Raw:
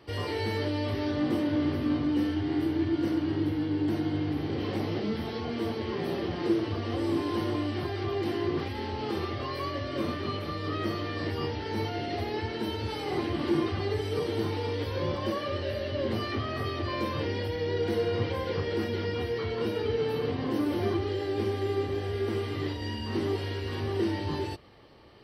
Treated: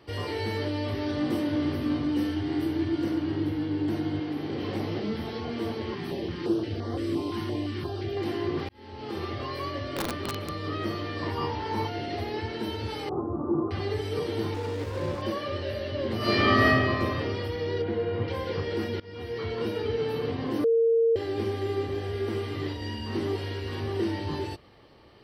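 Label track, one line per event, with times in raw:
1.090000	3.040000	high shelf 5600 Hz +6.5 dB
4.190000	4.630000	HPF 240 Hz -> 100 Hz
5.940000	8.170000	stepped notch 5.8 Hz 540–2600 Hz
8.690000	9.300000	fade in linear
9.920000	10.620000	wrapped overs gain 23 dB
11.220000	11.870000	bell 1000 Hz +14 dB 0.39 oct
13.090000	13.710000	Chebyshev low-pass 1300 Hz, order 6
14.540000	15.220000	running maximum over 9 samples
16.170000	16.650000	reverb throw, RT60 2 s, DRR -11.5 dB
17.820000	18.280000	air absorption 310 m
19.000000	19.460000	fade in, from -23 dB
20.640000	21.160000	bleep 458 Hz -18.5 dBFS

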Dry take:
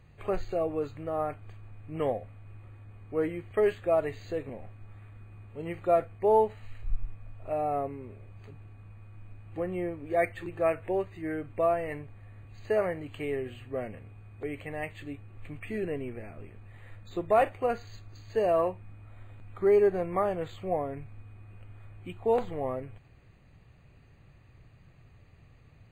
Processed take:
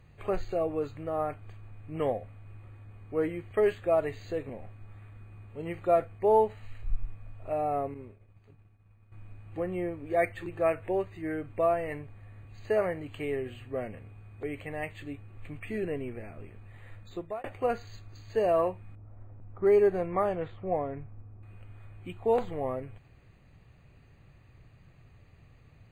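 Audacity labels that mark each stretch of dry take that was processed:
7.940000	9.120000	expander -40 dBFS
17.010000	17.440000	fade out
18.950000	21.430000	low-pass opened by the level closes to 640 Hz, open at -22 dBFS

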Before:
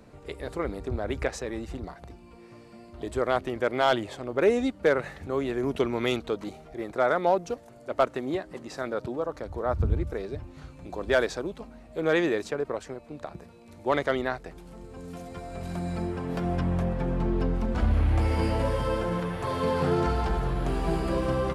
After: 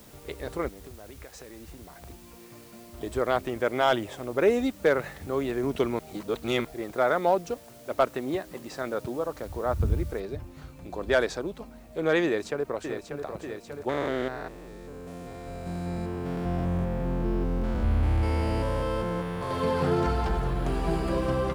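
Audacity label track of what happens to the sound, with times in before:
0.680000	2.050000	compressor 10:1, threshold -41 dBFS
3.480000	4.480000	notch 4300 Hz, Q 5.3
5.990000	6.650000	reverse
10.200000	10.200000	noise floor step -55 dB -66 dB
12.250000	13.240000	echo throw 0.59 s, feedback 70%, level -7 dB
13.890000	19.510000	stepped spectrum every 0.2 s

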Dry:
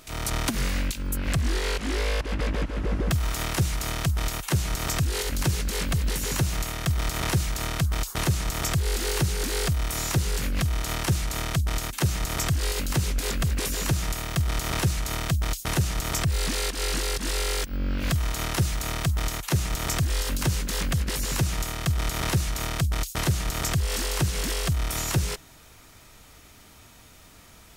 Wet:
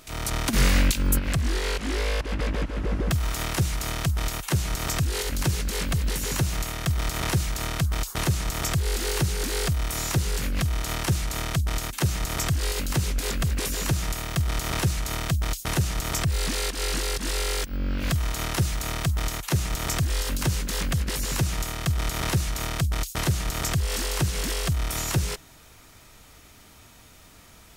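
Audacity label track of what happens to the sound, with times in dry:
0.530000	1.190000	gain +7 dB

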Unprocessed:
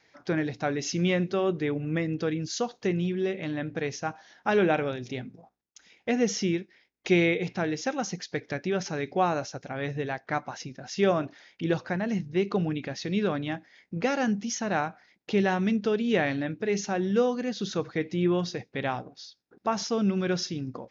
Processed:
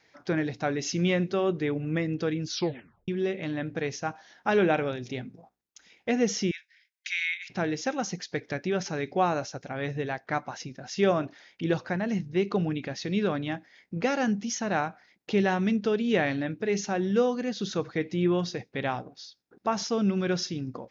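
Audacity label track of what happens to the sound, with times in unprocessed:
2.480000	2.480000	tape stop 0.60 s
6.510000	7.500000	Chebyshev high-pass 1500 Hz, order 6

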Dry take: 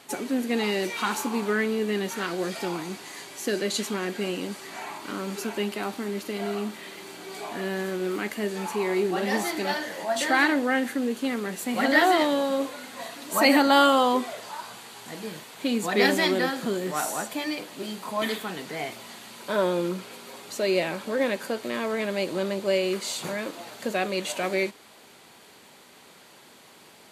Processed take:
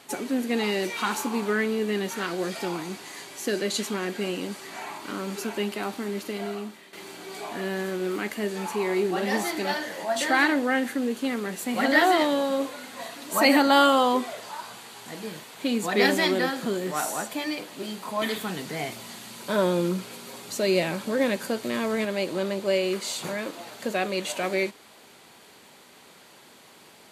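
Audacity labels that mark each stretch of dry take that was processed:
6.280000	6.930000	fade out, to -12.5 dB
18.360000	22.050000	tone controls bass +7 dB, treble +4 dB

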